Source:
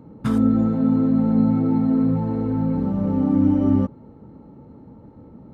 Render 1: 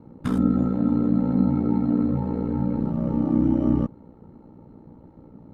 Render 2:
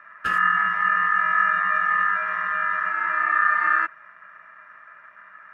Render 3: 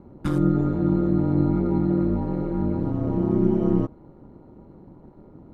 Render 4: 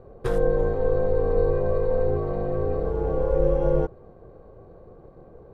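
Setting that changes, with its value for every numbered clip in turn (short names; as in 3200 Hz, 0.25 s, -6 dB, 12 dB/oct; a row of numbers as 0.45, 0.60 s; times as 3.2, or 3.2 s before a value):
ring modulator, frequency: 30, 1500, 78, 250 Hz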